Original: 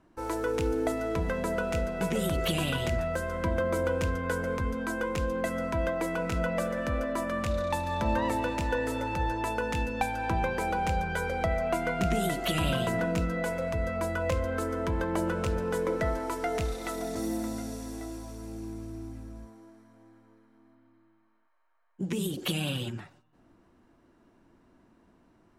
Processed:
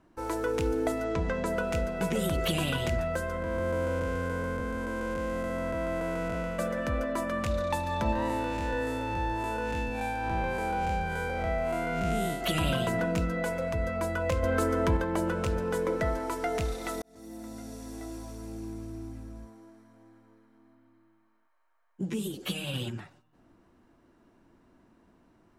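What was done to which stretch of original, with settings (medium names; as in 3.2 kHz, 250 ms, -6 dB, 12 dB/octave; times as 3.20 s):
1.04–1.46 s: low-pass 7.7 kHz 24 dB/octave
3.42–6.59 s: spectral blur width 392 ms
8.12–12.41 s: spectral blur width 135 ms
14.43–14.97 s: gain +4.5 dB
17.02–18.22 s: fade in
22.10–22.74 s: three-phase chorus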